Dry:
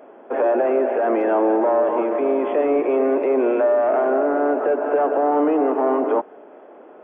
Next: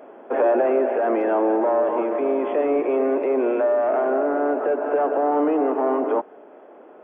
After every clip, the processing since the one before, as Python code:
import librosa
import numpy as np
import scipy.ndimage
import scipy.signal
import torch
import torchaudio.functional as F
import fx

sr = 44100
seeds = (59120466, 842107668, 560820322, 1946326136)

y = fx.rider(x, sr, range_db=5, speed_s=2.0)
y = y * librosa.db_to_amplitude(-2.0)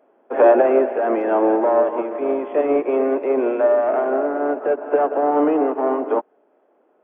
y = fx.upward_expand(x, sr, threshold_db=-31.0, expansion=2.5)
y = y * librosa.db_to_amplitude(7.5)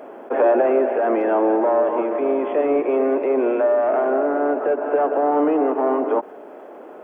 y = fx.env_flatten(x, sr, amount_pct=50)
y = y * librosa.db_to_amplitude(-4.5)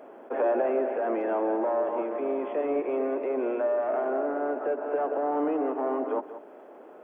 y = x + 10.0 ** (-13.5 / 20.0) * np.pad(x, (int(182 * sr / 1000.0), 0))[:len(x)]
y = y * librosa.db_to_amplitude(-9.0)